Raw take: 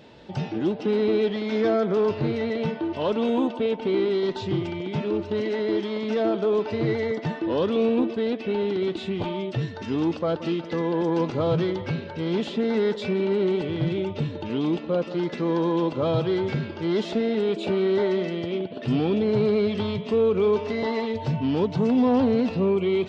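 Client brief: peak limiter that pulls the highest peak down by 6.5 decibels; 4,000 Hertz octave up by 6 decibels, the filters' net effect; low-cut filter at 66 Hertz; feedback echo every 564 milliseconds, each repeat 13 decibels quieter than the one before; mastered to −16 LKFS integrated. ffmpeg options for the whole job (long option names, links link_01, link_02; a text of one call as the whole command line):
ffmpeg -i in.wav -af "highpass=66,equalizer=frequency=4000:width_type=o:gain=7.5,alimiter=limit=-18dB:level=0:latency=1,aecho=1:1:564|1128|1692:0.224|0.0493|0.0108,volume=10.5dB" out.wav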